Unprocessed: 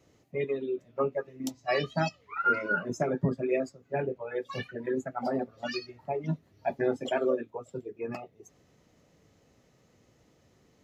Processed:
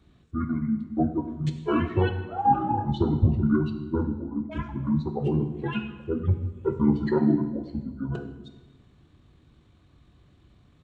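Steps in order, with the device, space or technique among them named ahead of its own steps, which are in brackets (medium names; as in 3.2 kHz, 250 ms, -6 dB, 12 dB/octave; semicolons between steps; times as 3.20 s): 4.07–4.52 s: FFT filter 340 Hz 0 dB, 1.8 kHz -10 dB, 5.2 kHz -30 dB; monster voice (pitch shift -9.5 st; bass shelf 160 Hz +7 dB; reverberation RT60 1.2 s, pre-delay 3 ms, DRR 7 dB); trim +2.5 dB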